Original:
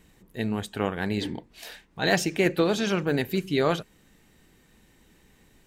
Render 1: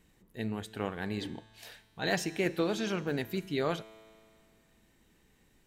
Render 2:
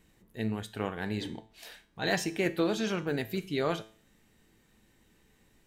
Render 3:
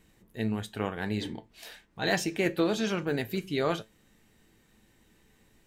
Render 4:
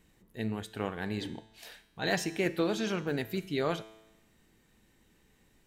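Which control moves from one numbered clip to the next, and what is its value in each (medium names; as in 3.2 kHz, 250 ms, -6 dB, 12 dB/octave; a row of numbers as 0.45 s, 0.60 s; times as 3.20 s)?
feedback comb, decay: 2.2 s, 0.44 s, 0.17 s, 0.99 s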